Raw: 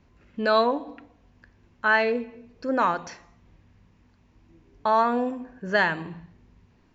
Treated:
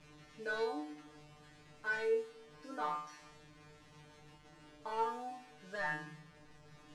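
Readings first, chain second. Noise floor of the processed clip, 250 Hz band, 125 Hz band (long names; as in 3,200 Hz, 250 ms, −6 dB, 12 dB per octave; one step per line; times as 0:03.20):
−61 dBFS, −19.0 dB, −14.0 dB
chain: linear delta modulator 64 kbit/s, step −36.5 dBFS
Bessel low-pass filter 6,300 Hz, order 2
tuned comb filter 150 Hz, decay 0.44 s, harmonics all, mix 100%
level −1 dB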